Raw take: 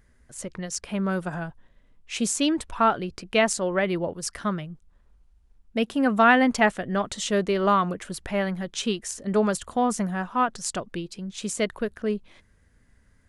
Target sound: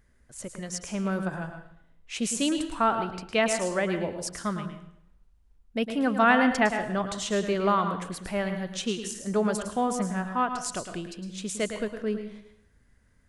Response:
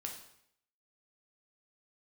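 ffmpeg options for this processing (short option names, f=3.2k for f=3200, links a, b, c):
-filter_complex "[0:a]asplit=2[a][b];[1:a]atrim=start_sample=2205,adelay=108[c];[b][c]afir=irnorm=-1:irlink=0,volume=-5dB[d];[a][d]amix=inputs=2:normalize=0,volume=-3.5dB"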